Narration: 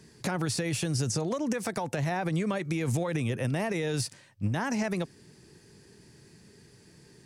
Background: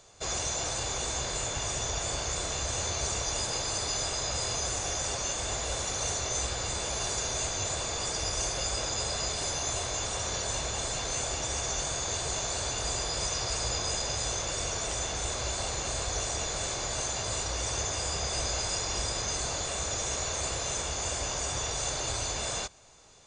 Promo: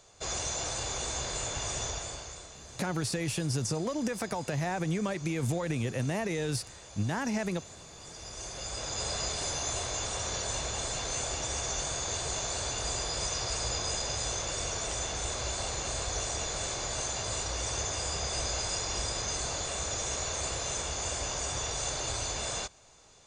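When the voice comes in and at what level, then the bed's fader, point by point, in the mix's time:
2.55 s, −2.0 dB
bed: 0:01.85 −2 dB
0:02.57 −17 dB
0:07.93 −17 dB
0:09.08 −1.5 dB

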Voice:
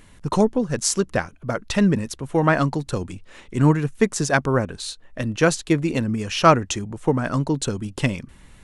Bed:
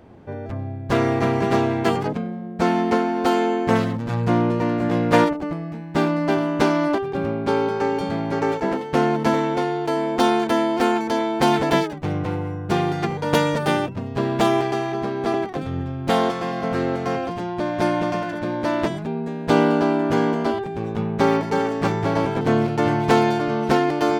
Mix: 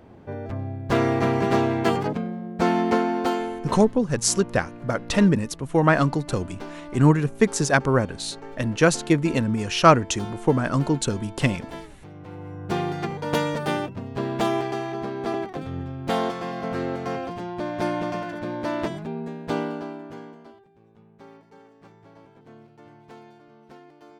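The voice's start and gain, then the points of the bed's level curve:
3.40 s, 0.0 dB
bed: 0:03.15 −1.5 dB
0:03.91 −19 dB
0:12.13 −19 dB
0:12.65 −5 dB
0:19.28 −5 dB
0:20.72 −29.5 dB

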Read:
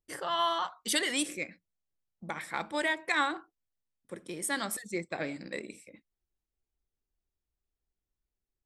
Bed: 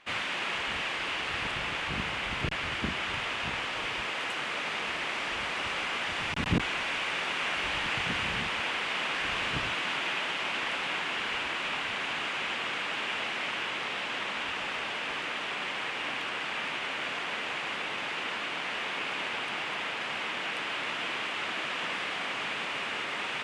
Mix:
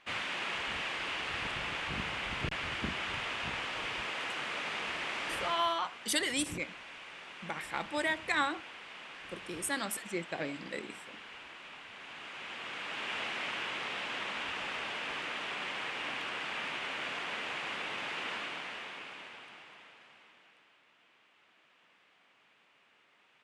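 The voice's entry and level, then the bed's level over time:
5.20 s, −2.0 dB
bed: 0:05.46 −4 dB
0:05.75 −16.5 dB
0:11.89 −16.5 dB
0:13.17 −4 dB
0:18.36 −4 dB
0:20.82 −33 dB

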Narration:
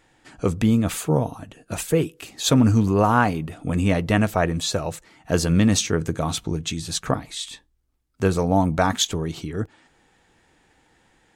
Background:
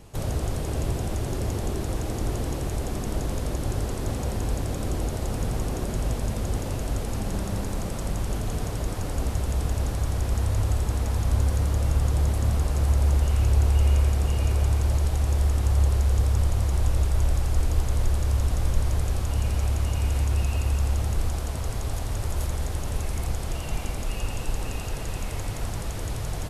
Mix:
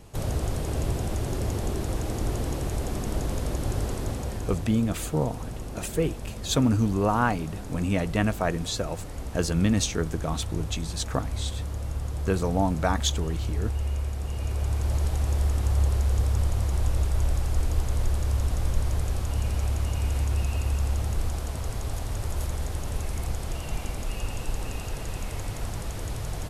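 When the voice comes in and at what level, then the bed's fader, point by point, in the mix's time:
4.05 s, −5.5 dB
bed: 0:03.93 −0.5 dB
0:04.82 −8.5 dB
0:14.16 −8.5 dB
0:15.02 −2 dB

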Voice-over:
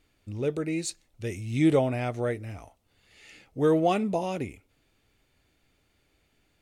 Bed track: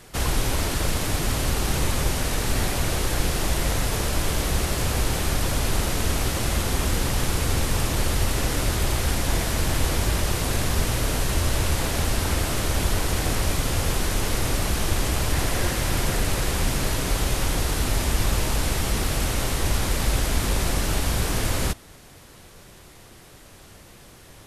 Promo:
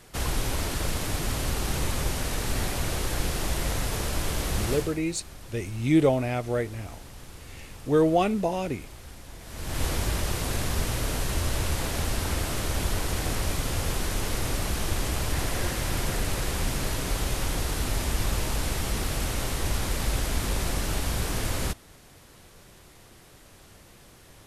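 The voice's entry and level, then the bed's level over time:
4.30 s, +1.5 dB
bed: 0:04.74 −4.5 dB
0:05.02 −21 dB
0:09.39 −21 dB
0:09.82 −4.5 dB

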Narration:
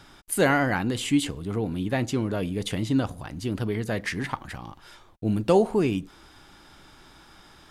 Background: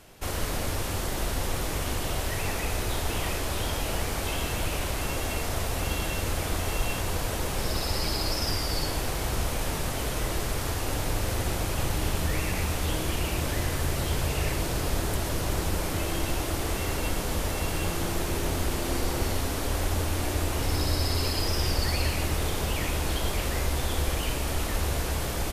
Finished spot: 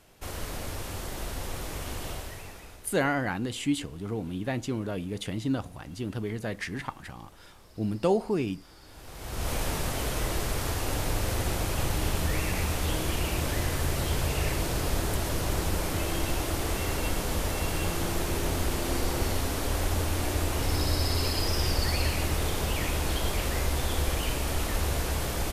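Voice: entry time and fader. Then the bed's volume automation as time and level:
2.55 s, −5.0 dB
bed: 0:02.10 −6 dB
0:03.06 −26.5 dB
0:08.79 −26.5 dB
0:09.51 −0.5 dB

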